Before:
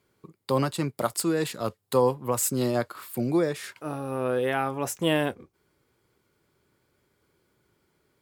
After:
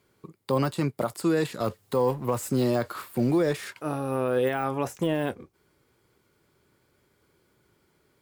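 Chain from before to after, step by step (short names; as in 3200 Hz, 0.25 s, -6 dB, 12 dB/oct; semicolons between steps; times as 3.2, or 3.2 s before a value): 1.6–3.68 G.711 law mismatch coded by mu; de-esser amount 90%; limiter -18.5 dBFS, peak gain reduction 6.5 dB; gain +3 dB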